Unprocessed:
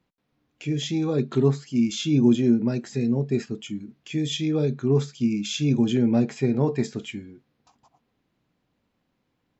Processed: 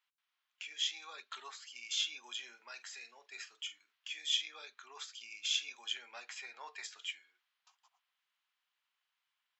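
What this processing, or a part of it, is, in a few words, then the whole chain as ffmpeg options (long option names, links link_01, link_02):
headphones lying on a table: -filter_complex "[0:a]asettb=1/sr,asplit=3[link_01][link_02][link_03];[link_01]atrim=end=2.364[link_04];[link_02]atrim=start=2.36:end=4.42,asetpts=PTS-STARTPTS,afade=type=in:duration=0.004:curve=qsin,afade=type=out:start_time=2.056:duration=0.004:curve=qsin,asplit=2[link_05][link_06];[link_06]adelay=46,volume=-14dB[link_07];[link_05][link_07]amix=inputs=2:normalize=0,atrim=end_sample=90846[link_08];[link_03]atrim=start=4.416[link_09];[link_04][link_08]acrossfade=duration=0.004:curve1=hsin:curve2=qsin[link_10];[link_10][link_09]acrossfade=duration=0.004:curve1=qsin:curve2=hsin,highpass=frequency=1100:width=0.5412,highpass=frequency=1100:width=1.3066,equalizer=frequency=3100:width_type=o:width=0.39:gain=5.5,volume=-5.5dB"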